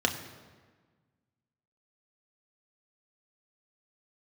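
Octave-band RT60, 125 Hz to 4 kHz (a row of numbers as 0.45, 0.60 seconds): 1.9, 1.8, 1.5, 1.4, 1.3, 1.0 seconds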